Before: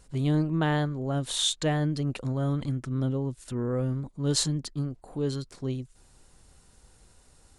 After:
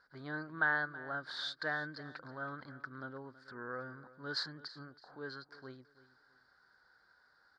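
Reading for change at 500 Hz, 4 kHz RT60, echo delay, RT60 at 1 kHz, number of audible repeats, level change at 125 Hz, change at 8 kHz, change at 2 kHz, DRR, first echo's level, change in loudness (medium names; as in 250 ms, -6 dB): -14.0 dB, no reverb, 325 ms, no reverb, 2, -24.5 dB, -30.0 dB, +4.5 dB, no reverb, -17.5 dB, -11.0 dB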